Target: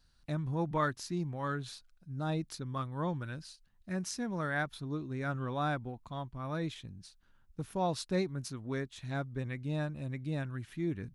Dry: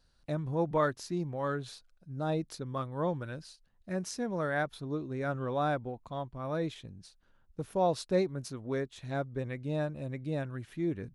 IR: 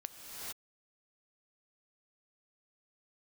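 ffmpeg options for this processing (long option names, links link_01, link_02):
-af "equalizer=frequency=520:width=1.2:gain=-8.5,volume=1dB"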